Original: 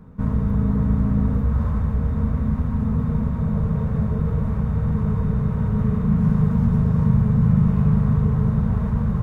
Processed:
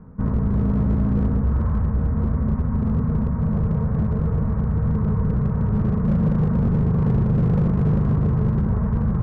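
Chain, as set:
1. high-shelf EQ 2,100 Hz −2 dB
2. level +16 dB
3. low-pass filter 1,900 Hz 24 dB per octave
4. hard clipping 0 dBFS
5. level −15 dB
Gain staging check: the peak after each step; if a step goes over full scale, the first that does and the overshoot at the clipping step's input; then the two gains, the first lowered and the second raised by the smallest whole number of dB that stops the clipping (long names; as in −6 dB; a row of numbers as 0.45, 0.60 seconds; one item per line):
−6.5, +9.5, +9.5, 0.0, −15.0 dBFS
step 2, 9.5 dB
step 2 +6 dB, step 5 −5 dB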